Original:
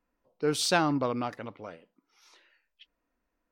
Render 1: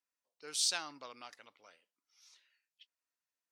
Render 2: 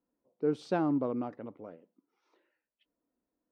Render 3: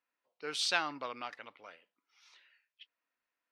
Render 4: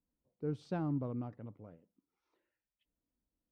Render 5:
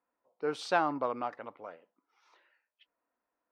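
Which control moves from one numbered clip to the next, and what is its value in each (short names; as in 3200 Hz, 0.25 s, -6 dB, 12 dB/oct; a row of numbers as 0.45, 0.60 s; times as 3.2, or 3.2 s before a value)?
band-pass, frequency: 7000, 300, 2700, 100, 900 Hz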